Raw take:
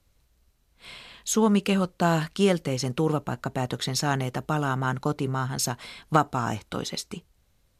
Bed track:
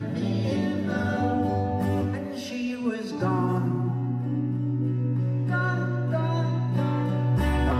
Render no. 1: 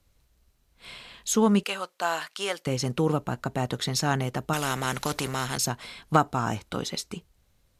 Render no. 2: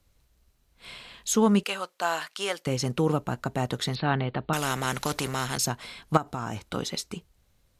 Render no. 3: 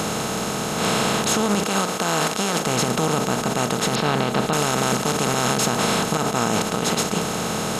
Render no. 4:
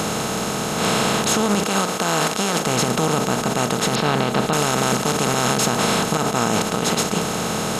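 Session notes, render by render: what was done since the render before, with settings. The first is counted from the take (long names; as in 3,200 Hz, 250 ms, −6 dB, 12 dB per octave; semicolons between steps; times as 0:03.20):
0:01.63–0:02.67: high-pass filter 750 Hz; 0:04.53–0:05.58: every bin compressed towards the loudest bin 2 to 1
0:03.95–0:04.53: Butterworth low-pass 4,400 Hz 96 dB per octave; 0:06.17–0:06.69: downward compressor 5 to 1, threshold −28 dBFS
compressor on every frequency bin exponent 0.2; brickwall limiter −9.5 dBFS, peak gain reduction 10 dB
level +1.5 dB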